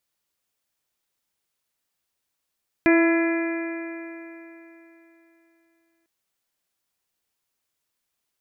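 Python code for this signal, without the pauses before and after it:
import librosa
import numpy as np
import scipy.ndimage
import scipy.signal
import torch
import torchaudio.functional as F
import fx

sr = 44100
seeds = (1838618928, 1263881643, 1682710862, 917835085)

y = fx.additive_stiff(sr, length_s=3.2, hz=331.0, level_db=-14, upper_db=(-9.0, -16.5, -18.5, -9.5, -12.0, -12), decay_s=3.39, stiffness=0.0014)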